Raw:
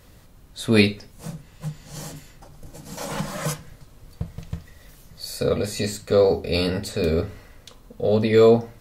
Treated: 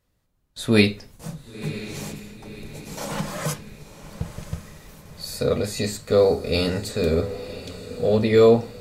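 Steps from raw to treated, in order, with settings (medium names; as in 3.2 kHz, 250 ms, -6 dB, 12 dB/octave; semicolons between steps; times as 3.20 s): gate with hold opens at -37 dBFS; on a send: echo that smears into a reverb 1028 ms, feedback 50%, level -13.5 dB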